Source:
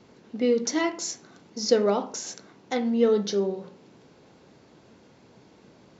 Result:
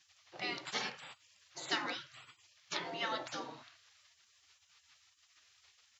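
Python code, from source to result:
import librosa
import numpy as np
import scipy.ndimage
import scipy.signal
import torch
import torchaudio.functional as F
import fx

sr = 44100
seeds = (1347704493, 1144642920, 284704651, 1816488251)

y = scipy.signal.sosfilt(scipy.signal.butter(4, 140.0, 'highpass', fs=sr, output='sos'), x)
y = fx.spec_gate(y, sr, threshold_db=-25, keep='weak')
y = fx.high_shelf(y, sr, hz=6500.0, db=-5.5)
y = y * 10.0 ** (5.0 / 20.0)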